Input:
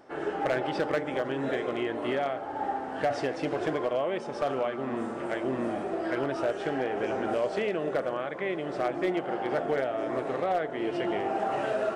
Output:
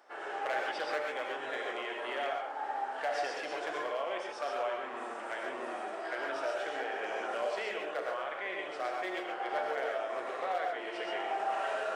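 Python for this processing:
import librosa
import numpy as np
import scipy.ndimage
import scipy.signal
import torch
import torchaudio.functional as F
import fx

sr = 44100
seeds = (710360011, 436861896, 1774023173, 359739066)

p1 = scipy.signal.sosfilt(scipy.signal.butter(2, 750.0, 'highpass', fs=sr, output='sos'), x)
p2 = 10.0 ** (-29.5 / 20.0) * np.tanh(p1 / 10.0 ** (-29.5 / 20.0))
p3 = p1 + F.gain(torch.from_numpy(p2), -11.0).numpy()
p4 = fx.rev_gated(p3, sr, seeds[0], gate_ms=160, shape='rising', drr_db=0.5)
y = F.gain(torch.from_numpy(p4), -5.0).numpy()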